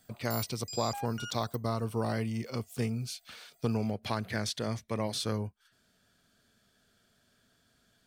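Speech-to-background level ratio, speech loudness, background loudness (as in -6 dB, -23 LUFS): 7.5 dB, -34.5 LUFS, -42.0 LUFS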